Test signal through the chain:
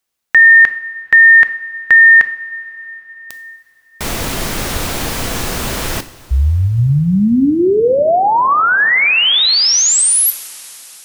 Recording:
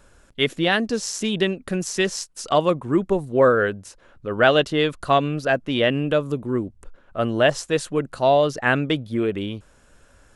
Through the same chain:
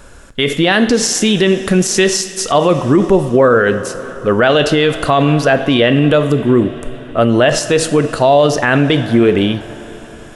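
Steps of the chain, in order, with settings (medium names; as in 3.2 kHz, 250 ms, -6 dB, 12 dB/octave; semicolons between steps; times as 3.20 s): two-slope reverb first 0.55 s, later 4.9 s, from -16 dB, DRR 11 dB; loudness maximiser +15 dB; trim -1 dB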